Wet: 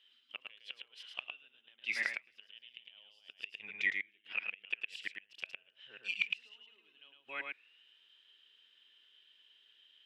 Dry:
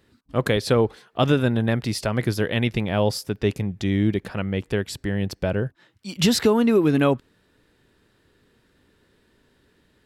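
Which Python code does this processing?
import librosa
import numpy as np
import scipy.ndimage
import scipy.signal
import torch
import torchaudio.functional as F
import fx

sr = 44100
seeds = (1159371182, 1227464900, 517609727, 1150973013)

y = fx.reverse_delay(x, sr, ms=206, wet_db=-9.0)
y = fx.highpass(y, sr, hz=300.0, slope=6)
y = fx.cheby_harmonics(y, sr, harmonics=(3,), levels_db=(-24,), full_scale_db=-5.5)
y = fx.notch(y, sr, hz=4400.0, q=14.0)
y = fx.gate_flip(y, sr, shuts_db=-18.0, range_db=-31)
y = y + 10.0 ** (-4.0 / 20.0) * np.pad(y, (int(109 * sr / 1000.0), 0))[:len(y)]
y = fx.auto_wah(y, sr, base_hz=730.0, top_hz=3100.0, q=16.0, full_db=-16.0, direction='down')
y = y * 10.0 ** (16.5 / 20.0)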